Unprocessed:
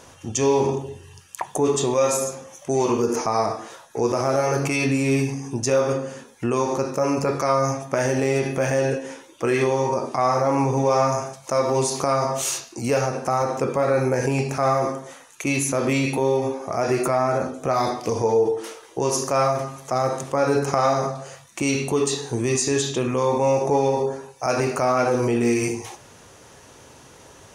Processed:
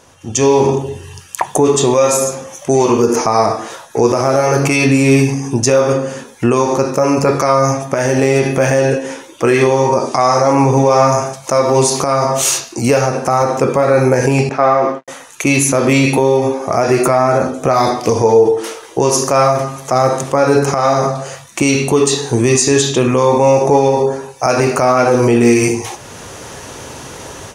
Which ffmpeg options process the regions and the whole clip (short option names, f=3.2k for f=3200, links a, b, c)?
-filter_complex "[0:a]asettb=1/sr,asplit=3[a][b][c];[a]atrim=end=10.004[d];[b]atrim=start=10:end=10.53,asetpts=PTS-STARTPTS,afade=t=in:d=0.004:c=qsin,afade=t=out:st=0.526:d=0.004:c=qsin,lowpass=8.5k,bass=f=250:g=-2,treble=f=4k:g=8[e];[c]atrim=start=10.526[f];[d][e]acrossfade=d=0.004:c1=hsin:c2=qsin[g];[g][f]acrossfade=d=0.004:c1=qsin:c2=hsin,asettb=1/sr,asplit=3[h][i][j];[h]atrim=end=14.494[k];[i]atrim=start=14.49:end=15.08,asetpts=PTS-STARTPTS,afade=t=in:d=0.004:c=qsin,afade=t=out:st=0.586:d=0.004:c=qsin,agate=range=-33dB:threshold=-27dB:ratio=3:release=100:detection=peak,aeval=exprs='sgn(val(0))*max(abs(val(0))-0.00316,0)':c=same,highpass=220,lowpass=3.2k[l];[j]atrim=start=15.076[m];[k][l]acrossfade=d=0.004:c1=hsin:c2=qsin[n];[n][m]acrossfade=d=0.004:c1=qsin:c2=hsin,alimiter=limit=-12.5dB:level=0:latency=1:release=422,dynaudnorm=f=220:g=3:m=16.5dB"